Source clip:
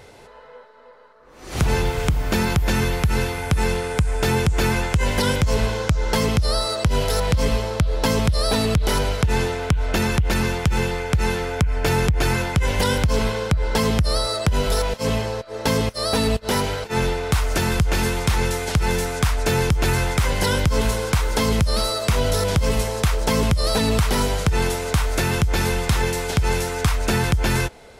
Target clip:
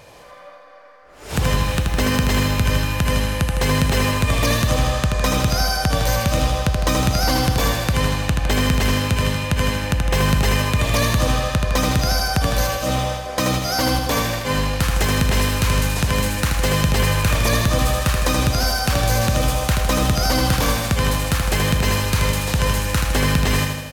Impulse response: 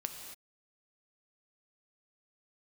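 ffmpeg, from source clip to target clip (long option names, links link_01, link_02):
-filter_complex "[0:a]asetrate=51597,aresample=44100,aecho=1:1:79|158|237|316|395|474|553|632:0.596|0.351|0.207|0.122|0.0722|0.0426|0.0251|0.0148,asplit=2[link_01][link_02];[1:a]atrim=start_sample=2205,lowshelf=frequency=320:gain=-10.5[link_03];[link_02][link_03]afir=irnorm=-1:irlink=0,volume=-5dB[link_04];[link_01][link_04]amix=inputs=2:normalize=0,volume=-2.5dB"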